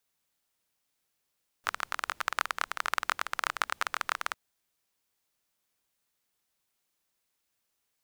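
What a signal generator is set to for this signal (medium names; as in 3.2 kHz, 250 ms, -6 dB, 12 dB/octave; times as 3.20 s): rain from filtered ticks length 2.70 s, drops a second 21, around 1.3 kHz, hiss -28 dB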